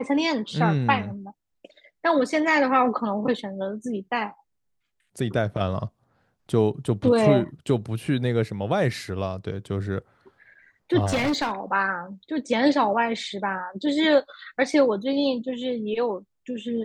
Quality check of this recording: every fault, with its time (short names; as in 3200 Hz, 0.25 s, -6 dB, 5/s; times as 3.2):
11.05–11.52 clipped -20 dBFS